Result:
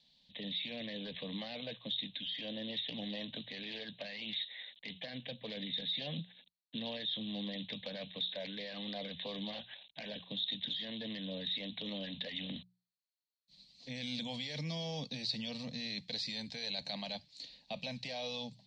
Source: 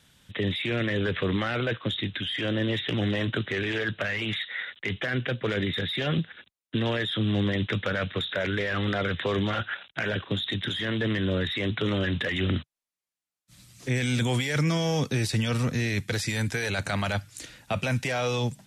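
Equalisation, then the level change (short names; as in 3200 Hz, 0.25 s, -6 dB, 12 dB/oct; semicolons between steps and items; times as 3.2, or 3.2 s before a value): ladder low-pass 4500 Hz, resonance 80%; notches 60/120/180 Hz; fixed phaser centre 370 Hz, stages 6; 0.0 dB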